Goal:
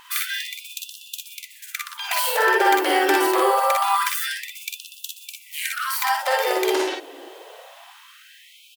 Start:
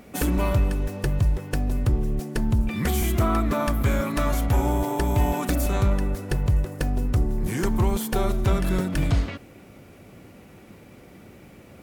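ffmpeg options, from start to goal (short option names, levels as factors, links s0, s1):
-filter_complex "[0:a]asplit=2[s0][s1];[s1]aecho=0:1:65|80:0.562|0.631[s2];[s0][s2]amix=inputs=2:normalize=0,asetrate=59535,aresample=44100,afftfilt=real='re*gte(b*sr/1024,270*pow(2600/270,0.5+0.5*sin(2*PI*0.25*pts/sr)))':imag='im*gte(b*sr/1024,270*pow(2600/270,0.5+0.5*sin(2*PI*0.25*pts/sr)))':win_size=1024:overlap=0.75,volume=2.11"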